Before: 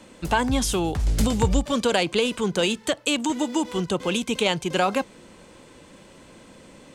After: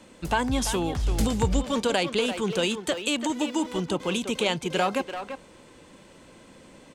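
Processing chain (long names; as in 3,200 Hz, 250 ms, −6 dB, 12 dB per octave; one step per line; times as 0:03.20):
far-end echo of a speakerphone 340 ms, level −7 dB
level −3 dB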